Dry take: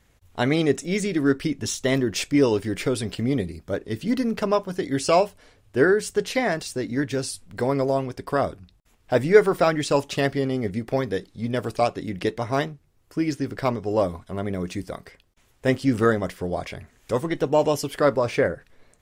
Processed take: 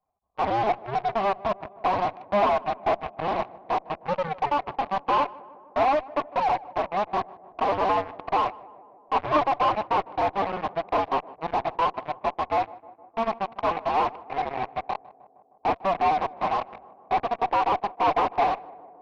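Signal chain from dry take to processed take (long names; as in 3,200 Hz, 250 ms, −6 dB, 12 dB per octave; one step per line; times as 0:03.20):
sub-harmonics by changed cycles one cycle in 2, inverted
formant resonators in series a
high-shelf EQ 2,500 Hz +6 dB
phase-vocoder pitch shift with formants kept +6 semitones
in parallel at −5 dB: fuzz pedal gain 42 dB, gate −43 dBFS
on the sum: high-frequency loss of the air 290 metres
on a send: tape delay 153 ms, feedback 82%, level −18 dB, low-pass 1,100 Hz
on the sum: level −2 dB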